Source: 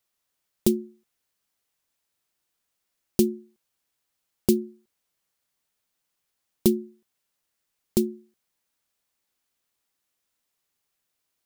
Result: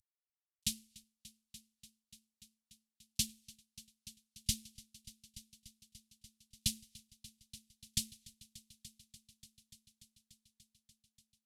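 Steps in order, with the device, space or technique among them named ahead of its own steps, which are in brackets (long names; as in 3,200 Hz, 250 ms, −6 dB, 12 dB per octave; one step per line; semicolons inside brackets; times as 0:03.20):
noise reduction from a noise print of the clip's start 17 dB
early wireless headset (high-pass filter 270 Hz 6 dB per octave; variable-slope delta modulation 64 kbit/s)
inverse Chebyshev band-stop filter 410–890 Hz, stop band 80 dB
echo machine with several playback heads 292 ms, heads all three, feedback 67%, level −22 dB
level +5 dB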